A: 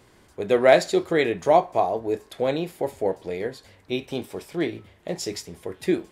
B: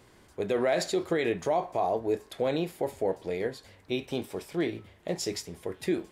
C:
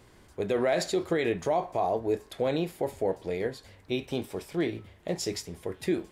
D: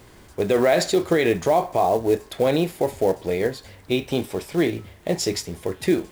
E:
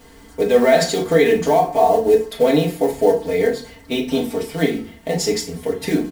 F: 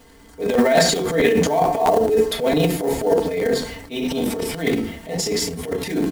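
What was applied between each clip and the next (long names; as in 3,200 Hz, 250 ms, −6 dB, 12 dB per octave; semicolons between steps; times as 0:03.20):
brickwall limiter −16 dBFS, peak gain reduction 11 dB; level −2 dB
low-shelf EQ 95 Hz +6.5 dB
log-companded quantiser 6 bits; level +8 dB
comb filter 4.4 ms, depth 92%; feedback delay network reverb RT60 0.36 s, low-frequency decay 1.6×, high-frequency decay 0.85×, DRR 1 dB; level −1.5 dB
transient designer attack −8 dB, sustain +11 dB; regular buffer underruns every 0.22 s, samples 512, repeat, from 0:00.53; level −3 dB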